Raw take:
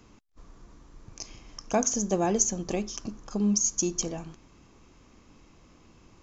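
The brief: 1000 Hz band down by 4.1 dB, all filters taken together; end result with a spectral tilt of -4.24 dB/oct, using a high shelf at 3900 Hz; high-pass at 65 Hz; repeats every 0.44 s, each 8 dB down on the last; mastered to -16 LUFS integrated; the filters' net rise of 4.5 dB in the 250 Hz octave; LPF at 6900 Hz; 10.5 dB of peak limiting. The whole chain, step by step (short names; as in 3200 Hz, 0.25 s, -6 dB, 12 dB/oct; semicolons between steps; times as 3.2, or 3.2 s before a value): HPF 65 Hz; LPF 6900 Hz; bell 250 Hz +6.5 dB; bell 1000 Hz -7.5 dB; high shelf 3900 Hz +6.5 dB; limiter -16.5 dBFS; feedback echo 0.44 s, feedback 40%, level -8 dB; gain +11 dB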